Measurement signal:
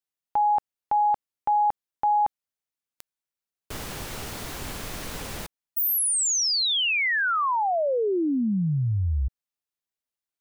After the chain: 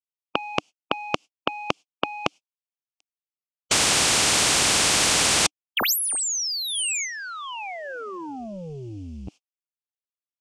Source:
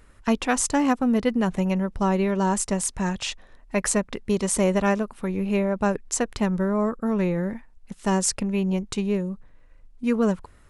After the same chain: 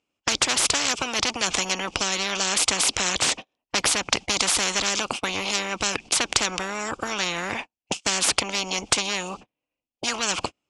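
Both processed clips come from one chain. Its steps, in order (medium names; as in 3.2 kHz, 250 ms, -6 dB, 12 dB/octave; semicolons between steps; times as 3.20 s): gate -37 dBFS, range -48 dB; resonant high shelf 2.1 kHz +7.5 dB, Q 3; in parallel at +2.5 dB: compression, threshold -24 dBFS; on the sum: saturation -8.5 dBFS; cabinet simulation 190–6700 Hz, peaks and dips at 300 Hz +5 dB, 760 Hz +7 dB, 1.9 kHz -8 dB, 3.9 kHz -9 dB; spectrum-flattening compressor 10:1; trim +3.5 dB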